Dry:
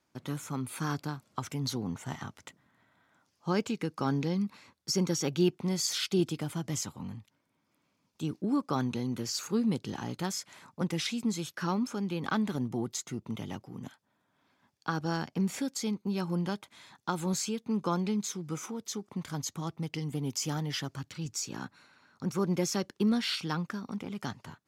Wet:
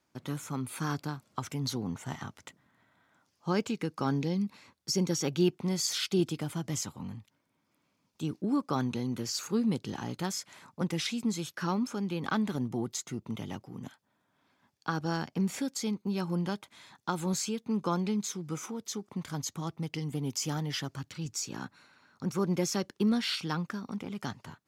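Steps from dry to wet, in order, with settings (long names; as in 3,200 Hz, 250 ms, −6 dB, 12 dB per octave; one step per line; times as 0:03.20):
0:04.18–0:05.11: dynamic equaliser 1,300 Hz, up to −7 dB, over −57 dBFS, Q 1.7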